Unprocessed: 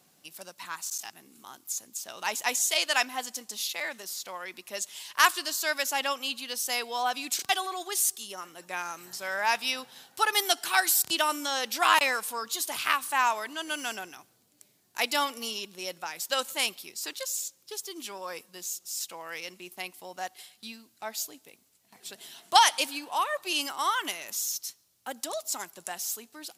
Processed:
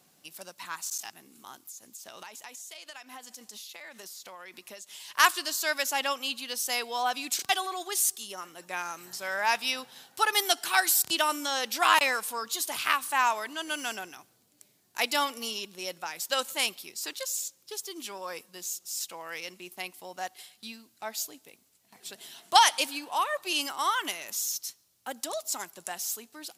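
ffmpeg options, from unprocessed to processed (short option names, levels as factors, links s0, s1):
-filter_complex "[0:a]asettb=1/sr,asplit=3[s0][s1][s2];[s0]atrim=end=1.644[s3];[s1]atrim=start=1.64:end=5.08,asetpts=PTS-STARTPTS,afade=t=in:d=0.004:c=qsin,afade=t=out:st=3.436:d=0.004:c=qsin,acompressor=threshold=0.01:ratio=16:attack=3.2:release=140:knee=1:detection=peak[s4];[s2]atrim=start=5.076[s5];[s3][s4]acrossfade=d=0.004:c1=hsin:c2=qsin[s6];[s6][s5]acrossfade=d=0.004:c1=qsin:c2=hsin"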